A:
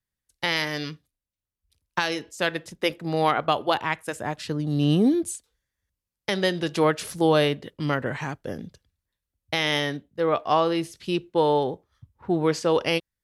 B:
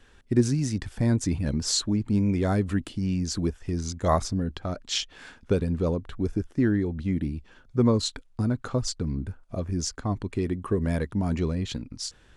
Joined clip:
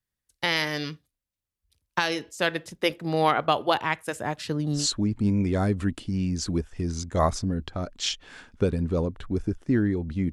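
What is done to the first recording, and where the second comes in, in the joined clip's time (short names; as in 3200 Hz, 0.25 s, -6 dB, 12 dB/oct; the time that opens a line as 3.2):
A
4.79 switch to B from 1.68 s, crossfade 0.16 s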